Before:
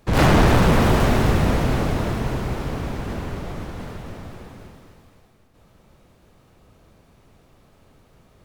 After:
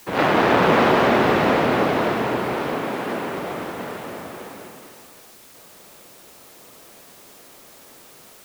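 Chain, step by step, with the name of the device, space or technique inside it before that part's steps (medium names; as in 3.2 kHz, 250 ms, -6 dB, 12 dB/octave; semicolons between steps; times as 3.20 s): dictaphone (band-pass 310–3300 Hz; level rider gain up to 8 dB; wow and flutter; white noise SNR 25 dB); 2.73–3.38 s: high-pass 120 Hz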